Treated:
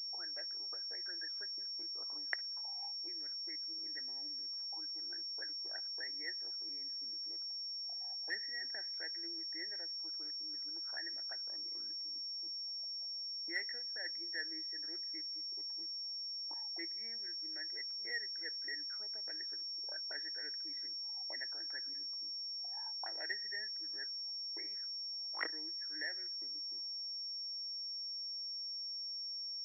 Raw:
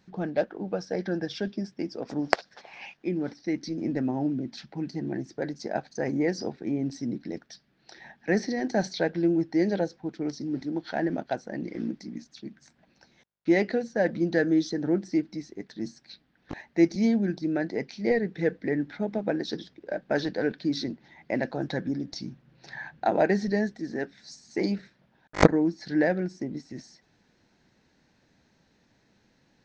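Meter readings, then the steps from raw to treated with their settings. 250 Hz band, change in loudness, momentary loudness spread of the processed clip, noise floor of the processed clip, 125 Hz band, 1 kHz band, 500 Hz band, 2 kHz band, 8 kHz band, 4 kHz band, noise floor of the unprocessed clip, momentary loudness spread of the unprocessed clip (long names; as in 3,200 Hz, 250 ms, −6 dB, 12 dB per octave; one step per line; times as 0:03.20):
−34.5 dB, −11.0 dB, 1 LU, −43 dBFS, below −40 dB, −23.0 dB, −31.0 dB, −10.0 dB, can't be measured, +7.0 dB, −67 dBFS, 14 LU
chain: envelope filter 660–1,900 Hz, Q 11, up, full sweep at −25 dBFS
four-pole ladder high-pass 270 Hz, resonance 45%
switching amplifier with a slow clock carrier 5,500 Hz
level +5.5 dB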